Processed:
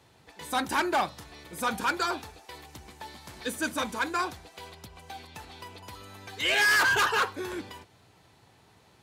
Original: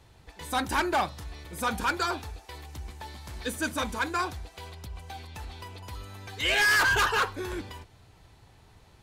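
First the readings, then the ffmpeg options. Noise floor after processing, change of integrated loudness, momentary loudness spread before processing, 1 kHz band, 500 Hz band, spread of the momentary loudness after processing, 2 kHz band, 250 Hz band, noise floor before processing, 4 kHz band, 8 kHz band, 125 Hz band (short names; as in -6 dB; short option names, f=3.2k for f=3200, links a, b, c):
-60 dBFS, 0.0 dB, 21 LU, 0.0 dB, 0.0 dB, 23 LU, 0.0 dB, -0.5 dB, -57 dBFS, 0.0 dB, 0.0 dB, -7.5 dB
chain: -af "highpass=140"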